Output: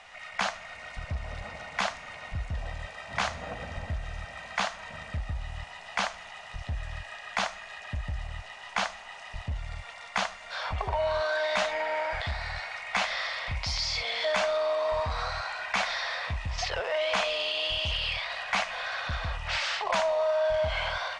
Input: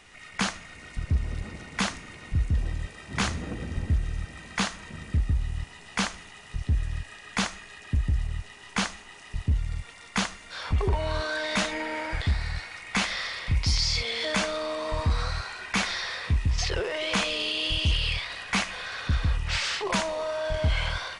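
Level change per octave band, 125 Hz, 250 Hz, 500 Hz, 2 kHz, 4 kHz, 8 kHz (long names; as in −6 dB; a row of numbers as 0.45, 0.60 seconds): −9.5, −12.5, +3.5, 0.0, −2.5, −6.5 decibels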